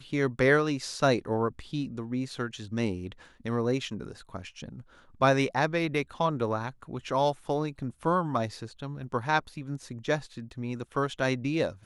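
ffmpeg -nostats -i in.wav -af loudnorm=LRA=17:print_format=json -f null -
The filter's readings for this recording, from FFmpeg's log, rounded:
"input_i" : "-29.8",
"input_tp" : "-9.7",
"input_lra" : "2.8",
"input_thresh" : "-40.3",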